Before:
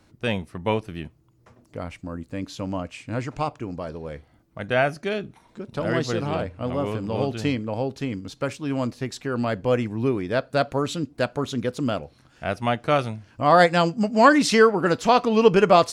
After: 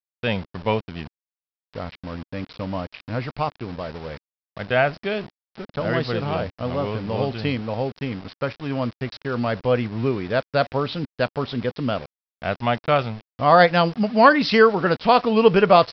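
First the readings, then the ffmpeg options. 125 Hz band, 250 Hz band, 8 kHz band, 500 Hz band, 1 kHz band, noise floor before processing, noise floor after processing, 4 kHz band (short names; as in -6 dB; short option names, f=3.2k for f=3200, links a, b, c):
+1.5 dB, 0.0 dB, under -15 dB, +1.5 dB, +2.0 dB, -59 dBFS, under -85 dBFS, +2.0 dB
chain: -af "aresample=11025,aeval=exprs='val(0)*gte(abs(val(0)),0.015)':c=same,aresample=44100,equalizer=f=310:w=3.2:g=-5.5,volume=2dB"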